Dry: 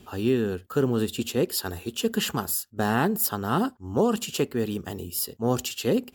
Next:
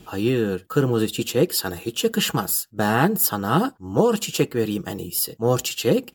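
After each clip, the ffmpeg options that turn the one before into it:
-af "aecho=1:1:6.2:0.53,volume=1.58"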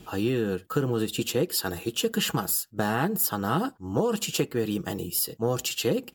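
-af "acompressor=threshold=0.0891:ratio=3,volume=0.841"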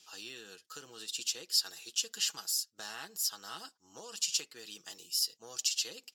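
-af "bandpass=f=5500:t=q:w=2.6:csg=0,volume=1.68"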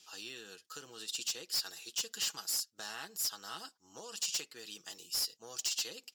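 -af "asoftclip=type=hard:threshold=0.0335"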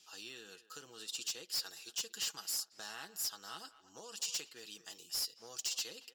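-filter_complex "[0:a]asplit=2[s0][s1];[s1]adelay=230,highpass=300,lowpass=3400,asoftclip=type=hard:threshold=0.0126,volume=0.178[s2];[s0][s2]amix=inputs=2:normalize=0,volume=0.708"

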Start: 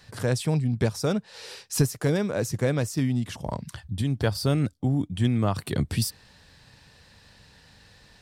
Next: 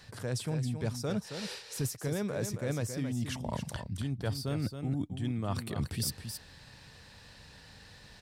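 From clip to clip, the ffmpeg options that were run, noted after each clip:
-af "areverse,acompressor=threshold=0.0282:ratio=6,areverse,aecho=1:1:271:0.398"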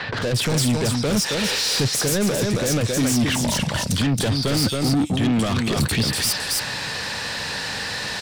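-filter_complex "[0:a]acrossover=split=3600[s0][s1];[s1]adelay=220[s2];[s0][s2]amix=inputs=2:normalize=0,asplit=2[s3][s4];[s4]highpass=f=720:p=1,volume=35.5,asoftclip=type=tanh:threshold=0.119[s5];[s3][s5]amix=inputs=2:normalize=0,lowpass=f=4800:p=1,volume=0.501,acrossover=split=350|3000[s6][s7][s8];[s7]acompressor=threshold=0.0126:ratio=3[s9];[s6][s9][s8]amix=inputs=3:normalize=0,volume=2.66"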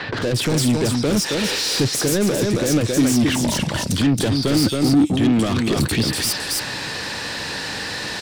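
-af "equalizer=f=320:w=2.2:g=8"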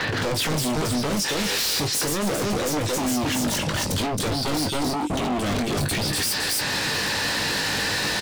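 -filter_complex "[0:a]alimiter=limit=0.158:level=0:latency=1:release=201,aeval=exprs='0.0668*(abs(mod(val(0)/0.0668+3,4)-2)-1)':c=same,asplit=2[s0][s1];[s1]adelay=20,volume=0.398[s2];[s0][s2]amix=inputs=2:normalize=0,volume=1.5"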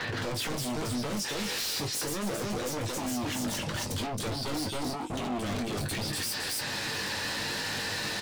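-af "flanger=delay=8.2:depth=1.3:regen=-44:speed=0.77:shape=triangular,volume=0.596"

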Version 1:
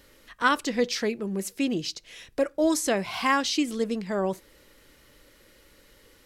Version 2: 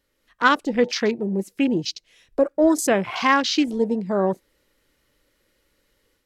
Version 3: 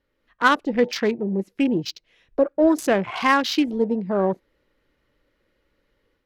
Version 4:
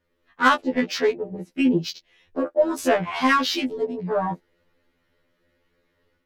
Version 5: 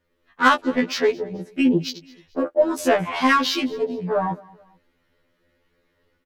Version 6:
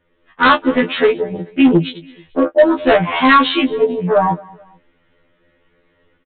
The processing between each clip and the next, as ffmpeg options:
-af "afwtdn=0.0178,dynaudnorm=f=150:g=3:m=2"
-af "aexciter=amount=2.7:drive=9:freq=11000,adynamicsmooth=sensitivity=1.5:basefreq=3300"
-af "afftfilt=real='re*2*eq(mod(b,4),0)':imag='im*2*eq(mod(b,4),0)':win_size=2048:overlap=0.75,volume=1.41"
-af "aecho=1:1:217|434:0.0708|0.0262,volume=1.19"
-filter_complex "[0:a]aresample=8000,asoftclip=type=hard:threshold=0.2,aresample=44100,asplit=2[s0][s1];[s1]adelay=18,volume=0.335[s2];[s0][s2]amix=inputs=2:normalize=0,volume=2.51"

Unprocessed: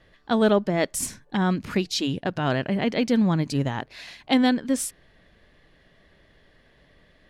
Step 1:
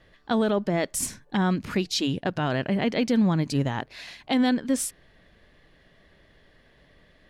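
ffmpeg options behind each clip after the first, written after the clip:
-af "alimiter=limit=0.211:level=0:latency=1:release=37"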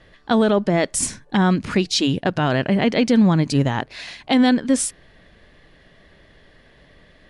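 -af "volume=2.24" -ar 24000 -c:a libmp3lame -b:a 160k

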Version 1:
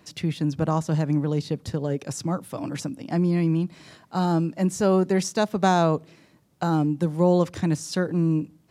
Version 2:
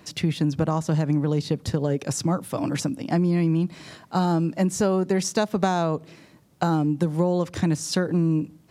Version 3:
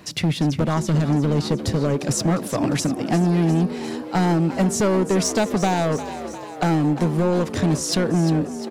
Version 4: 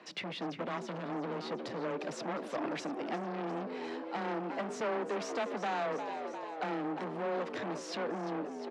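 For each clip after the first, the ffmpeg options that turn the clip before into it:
-af "acompressor=threshold=0.0708:ratio=6,volume=1.78"
-filter_complex "[0:a]asoftclip=type=hard:threshold=0.1,asplit=8[s0][s1][s2][s3][s4][s5][s6][s7];[s1]adelay=352,afreqshift=68,volume=0.237[s8];[s2]adelay=704,afreqshift=136,volume=0.15[s9];[s3]adelay=1056,afreqshift=204,volume=0.0944[s10];[s4]adelay=1408,afreqshift=272,volume=0.0596[s11];[s5]adelay=1760,afreqshift=340,volume=0.0372[s12];[s6]adelay=2112,afreqshift=408,volume=0.0234[s13];[s7]adelay=2464,afreqshift=476,volume=0.0148[s14];[s0][s8][s9][s10][s11][s12][s13][s14]amix=inputs=8:normalize=0,volume=1.78"
-af "afreqshift=15,asoftclip=type=tanh:threshold=0.075,highpass=380,lowpass=3000,volume=0.531"

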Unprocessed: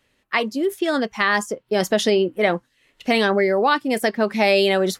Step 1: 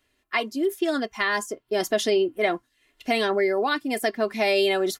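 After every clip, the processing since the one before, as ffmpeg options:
-af "highshelf=f=9900:g=6,aecho=1:1:2.9:0.6,volume=0.501"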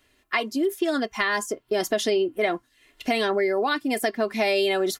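-af "acompressor=threshold=0.0251:ratio=2,volume=2.11"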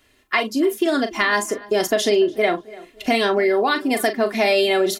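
-filter_complex "[0:a]asplit=2[s0][s1];[s1]adelay=39,volume=0.335[s2];[s0][s2]amix=inputs=2:normalize=0,asplit=2[s3][s4];[s4]adelay=291,lowpass=f=2900:p=1,volume=0.1,asplit=2[s5][s6];[s6]adelay=291,lowpass=f=2900:p=1,volume=0.4,asplit=2[s7][s8];[s8]adelay=291,lowpass=f=2900:p=1,volume=0.4[s9];[s3][s5][s7][s9]amix=inputs=4:normalize=0,volume=1.68"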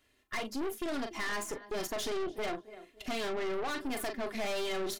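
-af "aeval=exprs='(tanh(15.8*val(0)+0.65)-tanh(0.65))/15.8':c=same,volume=0.376"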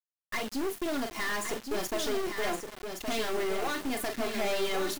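-af "flanger=delay=1.3:depth=6.5:regen=-85:speed=0.45:shape=triangular,acrusher=bits=7:mix=0:aa=0.000001,aecho=1:1:1118:0.501,volume=2.24"

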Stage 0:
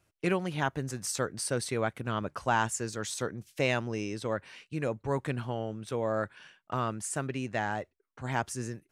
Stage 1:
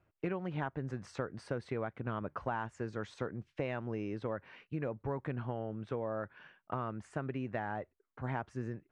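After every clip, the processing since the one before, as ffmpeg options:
-af "lowpass=1800,acompressor=threshold=0.0224:ratio=6"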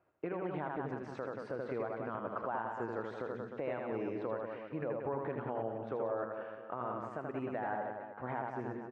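-filter_complex "[0:a]bandpass=f=710:t=q:w=0.7:csg=0,asplit=2[s0][s1];[s1]aecho=0:1:80|180|305|461.2|656.6:0.631|0.398|0.251|0.158|0.1[s2];[s0][s2]amix=inputs=2:normalize=0,alimiter=level_in=2:limit=0.0631:level=0:latency=1:release=189,volume=0.501,volume=1.5"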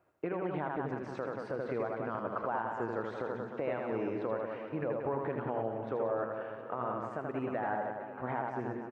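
-af "aecho=1:1:716|1432|2148|2864|3580:0.15|0.0868|0.0503|0.0292|0.0169,volume=1.41"

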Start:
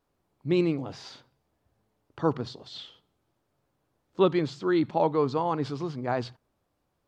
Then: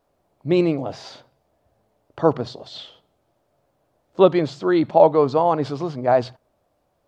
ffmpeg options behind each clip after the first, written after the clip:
-af "equalizer=f=630:t=o:w=0.7:g=10.5,volume=1.68"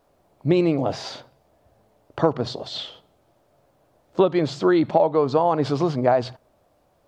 -af "acompressor=threshold=0.1:ratio=8,volume=1.88"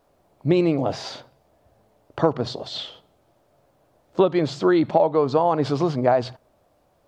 -af anull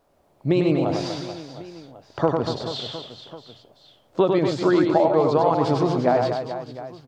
-af "aecho=1:1:100|240|436|710.4|1095:0.631|0.398|0.251|0.158|0.1,volume=0.841"

